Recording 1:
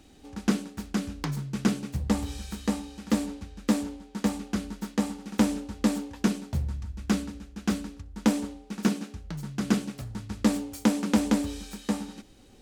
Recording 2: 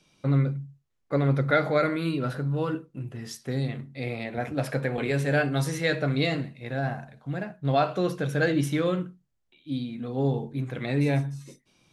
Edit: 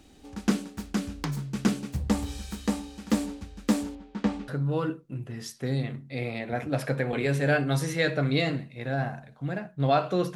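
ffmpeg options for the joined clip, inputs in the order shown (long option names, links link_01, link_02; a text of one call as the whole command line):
ffmpeg -i cue0.wav -i cue1.wav -filter_complex "[0:a]asettb=1/sr,asplit=3[link_01][link_02][link_03];[link_01]atrim=end=3.954[link_04];[link_02]atrim=start=3.95:end=4.48,asetpts=PTS-STARTPTS,afade=type=in:duration=0.004:curve=qsin,afade=type=out:start_time=0.526:duration=0.004:curve=qsin,lowpass=3400[link_05];[link_03]atrim=start=4.476[link_06];[link_04][link_05]acrossfade=duration=0.004:curve1=hsin:curve2=qsin[link_07];[link_07][link_06]acrossfade=duration=0.004:curve1=qsin:curve2=hsin,apad=whole_dur=10.35,atrim=end=10.35,atrim=end=4.482[link_08];[1:a]atrim=start=2.328:end=8.2[link_09];[link_08][link_09]acrossfade=duration=0.004:curve1=hsin:curve2=hsin" out.wav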